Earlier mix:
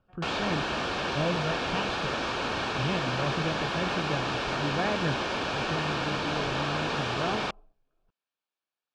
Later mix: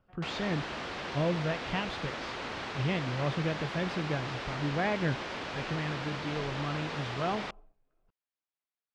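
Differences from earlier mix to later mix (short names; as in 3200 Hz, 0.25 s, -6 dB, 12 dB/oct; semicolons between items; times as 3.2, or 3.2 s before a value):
background -8.0 dB; master: remove Butterworth band-stop 2000 Hz, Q 6.9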